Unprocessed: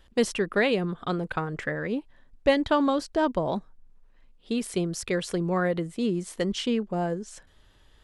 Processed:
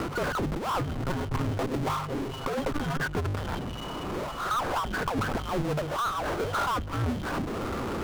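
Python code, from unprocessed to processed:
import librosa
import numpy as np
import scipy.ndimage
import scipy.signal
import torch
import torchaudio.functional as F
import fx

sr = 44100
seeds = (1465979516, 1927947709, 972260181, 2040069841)

y = fx.band_shuffle(x, sr, order='2413')
y = scipy.signal.sosfilt(scipy.signal.butter(8, 1400.0, 'lowpass', fs=sr, output='sos'), y)
y = fx.hum_notches(y, sr, base_hz=50, count=3)
y = fx.comb(y, sr, ms=7.5, depth=0.86, at=(0.94, 3.08))
y = fx.over_compress(y, sr, threshold_db=-41.0, ratio=-0.5)
y = fx.power_curve(y, sr, exponent=0.35)
y = fx.band_squash(y, sr, depth_pct=70)
y = y * librosa.db_to_amplitude(5.0)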